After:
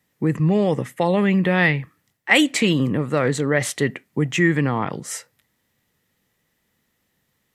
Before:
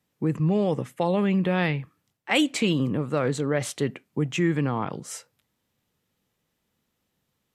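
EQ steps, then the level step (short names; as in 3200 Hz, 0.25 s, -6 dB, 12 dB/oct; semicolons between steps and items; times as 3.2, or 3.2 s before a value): bell 1900 Hz +10 dB 0.26 oct; high shelf 7900 Hz +4.5 dB; +4.5 dB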